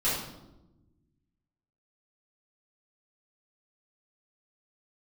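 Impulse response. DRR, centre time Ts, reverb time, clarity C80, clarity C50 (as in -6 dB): -10.0 dB, 57 ms, 1.0 s, 5.0 dB, 1.5 dB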